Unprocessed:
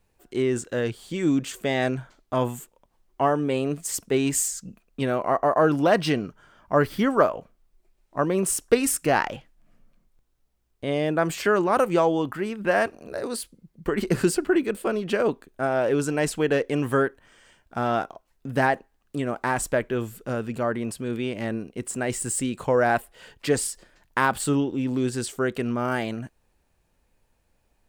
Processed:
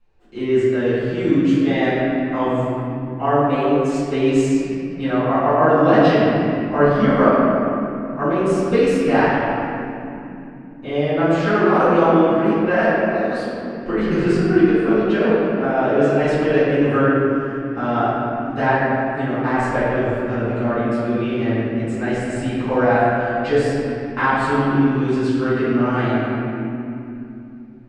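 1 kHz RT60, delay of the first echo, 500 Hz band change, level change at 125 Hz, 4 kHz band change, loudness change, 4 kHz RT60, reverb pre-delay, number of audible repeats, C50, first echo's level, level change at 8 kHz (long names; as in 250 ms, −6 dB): 2.6 s, no echo audible, +7.0 dB, +8.0 dB, +2.0 dB, +6.5 dB, 1.7 s, 4 ms, no echo audible, −3.5 dB, no echo audible, below −10 dB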